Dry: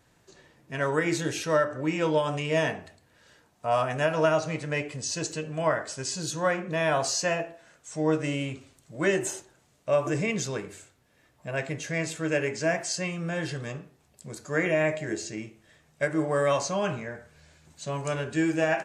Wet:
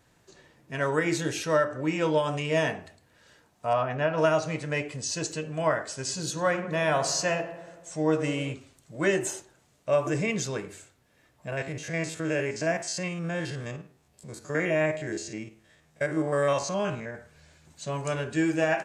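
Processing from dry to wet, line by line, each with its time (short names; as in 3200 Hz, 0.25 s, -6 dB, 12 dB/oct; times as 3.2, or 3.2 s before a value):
3.73–4.18 air absorption 230 m
5.85–8.54 darkening echo 94 ms, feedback 69%, low-pass 2400 Hz, level -12.5 dB
11.52–17.15 stepped spectrum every 50 ms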